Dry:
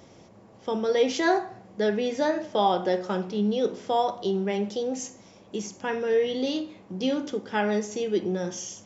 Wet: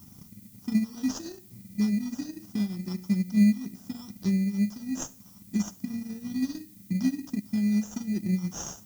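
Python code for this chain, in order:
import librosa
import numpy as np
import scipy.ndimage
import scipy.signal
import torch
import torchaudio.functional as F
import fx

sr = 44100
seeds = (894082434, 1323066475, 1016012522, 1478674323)

p1 = scipy.signal.sosfilt(scipy.signal.ellip(3, 1.0, 40, [230.0, 5300.0], 'bandstop', fs=sr, output='sos'), x)
p2 = fx.sample_hold(p1, sr, seeds[0], rate_hz=2200.0, jitter_pct=0)
p3 = p1 + (p2 * 10.0 ** (-4.0 / 20.0))
p4 = fx.transient(p3, sr, attack_db=7, sustain_db=-6)
y = fx.dmg_noise_colour(p4, sr, seeds[1], colour='violet', level_db=-55.0)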